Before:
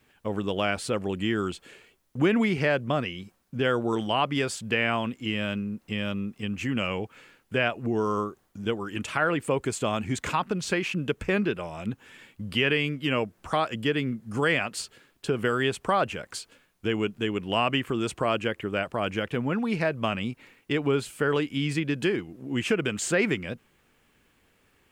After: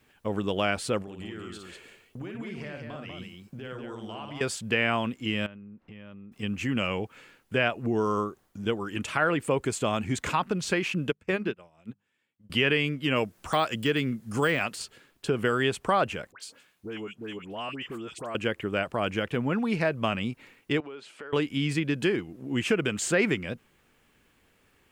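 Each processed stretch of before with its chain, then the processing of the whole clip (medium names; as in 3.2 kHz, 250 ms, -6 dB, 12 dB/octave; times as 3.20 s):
1.02–4.41 s: compression 8:1, threshold -37 dBFS + multi-tap echo 55/192 ms -5/-4.5 dB
5.46–6.32 s: low-pass 2.2 kHz + compression 4:1, threshold -45 dBFS
11.10–12.50 s: high-pass 65 Hz + hum notches 50/100/150/200 Hz + upward expansion 2.5:1, over -40 dBFS
13.16–14.81 s: de-esser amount 95% + treble shelf 2.7 kHz +7.5 dB
16.32–18.35 s: high-pass 170 Hz 6 dB/octave + compression 1.5:1, threshold -48 dBFS + phase dispersion highs, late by 83 ms, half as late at 1.6 kHz
20.80–21.33 s: band-pass 360–4300 Hz + compression 3:1, threshold -43 dBFS
whole clip: none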